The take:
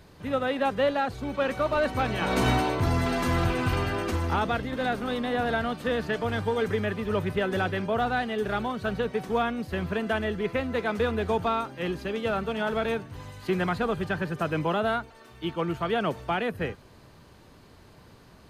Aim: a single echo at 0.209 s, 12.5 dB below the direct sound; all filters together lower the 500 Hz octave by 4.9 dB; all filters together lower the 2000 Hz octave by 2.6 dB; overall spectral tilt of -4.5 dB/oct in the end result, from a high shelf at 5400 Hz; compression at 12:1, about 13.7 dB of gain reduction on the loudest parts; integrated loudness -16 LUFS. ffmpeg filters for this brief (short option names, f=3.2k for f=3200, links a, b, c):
-af "equalizer=f=500:t=o:g=-6,equalizer=f=2k:t=o:g=-4,highshelf=f=5.4k:g=7,acompressor=threshold=-35dB:ratio=12,aecho=1:1:209:0.237,volume=23dB"